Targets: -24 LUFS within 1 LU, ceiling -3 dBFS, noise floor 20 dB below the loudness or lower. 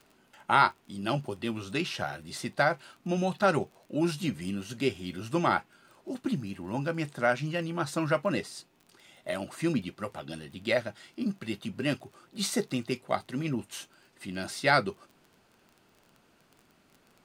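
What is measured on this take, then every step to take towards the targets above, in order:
ticks 19/s; loudness -31.0 LUFS; peak -8.0 dBFS; loudness target -24.0 LUFS
-> de-click; gain +7 dB; limiter -3 dBFS

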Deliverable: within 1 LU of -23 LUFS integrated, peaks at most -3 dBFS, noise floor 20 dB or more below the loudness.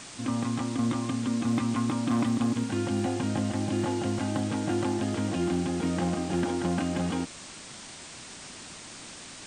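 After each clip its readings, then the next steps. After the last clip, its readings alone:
clipped 0.7%; flat tops at -20.5 dBFS; noise floor -45 dBFS; noise floor target -49 dBFS; loudness -29.0 LUFS; peak -20.5 dBFS; loudness target -23.0 LUFS
-> clip repair -20.5 dBFS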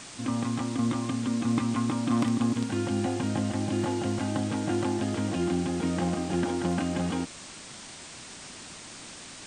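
clipped 0.0%; noise floor -45 dBFS; noise floor target -49 dBFS
-> denoiser 6 dB, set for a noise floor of -45 dBFS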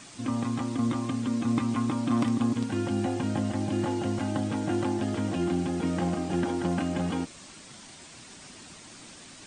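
noise floor -48 dBFS; noise floor target -49 dBFS
-> denoiser 6 dB, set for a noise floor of -48 dBFS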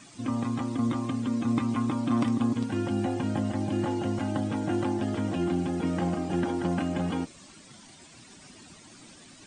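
noise floor -52 dBFS; loudness -29.0 LUFS; peak -13.5 dBFS; loudness target -23.0 LUFS
-> gain +6 dB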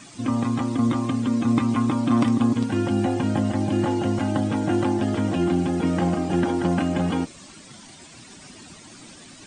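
loudness -23.0 LUFS; peak -7.5 dBFS; noise floor -46 dBFS

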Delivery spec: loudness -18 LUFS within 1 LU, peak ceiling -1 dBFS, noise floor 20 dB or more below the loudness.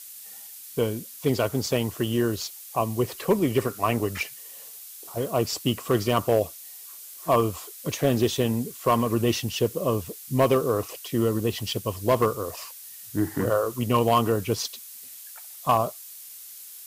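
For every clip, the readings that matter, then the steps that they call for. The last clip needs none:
noise floor -43 dBFS; noise floor target -46 dBFS; loudness -25.5 LUFS; peak -11.5 dBFS; loudness target -18.0 LUFS
-> denoiser 6 dB, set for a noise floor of -43 dBFS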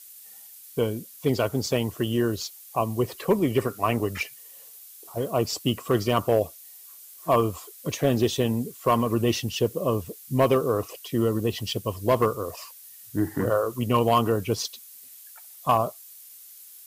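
noise floor -47 dBFS; loudness -26.0 LUFS; peak -11.5 dBFS; loudness target -18.0 LUFS
-> gain +8 dB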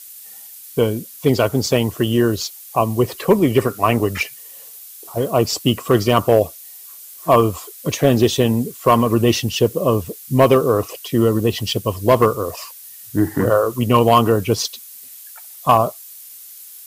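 loudness -18.0 LUFS; peak -3.5 dBFS; noise floor -39 dBFS

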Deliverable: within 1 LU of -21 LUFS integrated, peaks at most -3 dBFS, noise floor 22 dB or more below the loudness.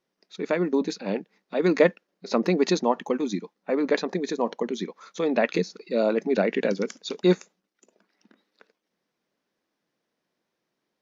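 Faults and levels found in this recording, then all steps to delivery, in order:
loudness -26.0 LUFS; peak -7.0 dBFS; loudness target -21.0 LUFS
-> gain +5 dB; limiter -3 dBFS

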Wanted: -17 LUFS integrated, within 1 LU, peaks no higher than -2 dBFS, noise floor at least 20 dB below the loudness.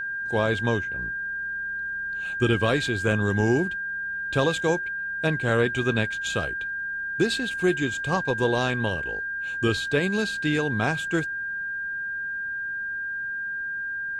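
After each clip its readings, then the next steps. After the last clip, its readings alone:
steady tone 1600 Hz; tone level -28 dBFS; loudness -26.0 LUFS; peak -9.0 dBFS; loudness target -17.0 LUFS
-> notch 1600 Hz, Q 30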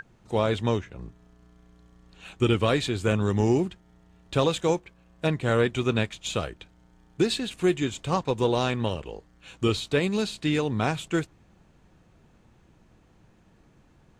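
steady tone none; loudness -26.5 LUFS; peak -9.0 dBFS; loudness target -17.0 LUFS
-> gain +9.5 dB; limiter -2 dBFS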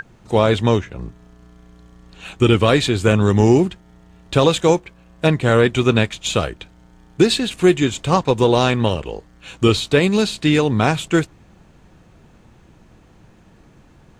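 loudness -17.0 LUFS; peak -2.0 dBFS; noise floor -50 dBFS

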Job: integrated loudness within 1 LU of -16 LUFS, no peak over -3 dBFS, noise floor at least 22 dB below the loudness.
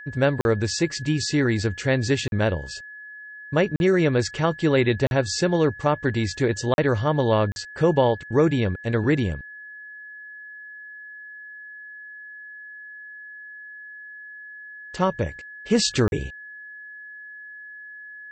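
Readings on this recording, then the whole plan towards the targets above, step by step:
dropouts 7; longest dropout 41 ms; steady tone 1700 Hz; tone level -38 dBFS; loudness -22.5 LUFS; peak -7.5 dBFS; loudness target -16.0 LUFS
-> interpolate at 0.41/2.28/3.76/5.07/6.74/7.52/16.08, 41 ms; notch 1700 Hz, Q 30; gain +6.5 dB; limiter -3 dBFS

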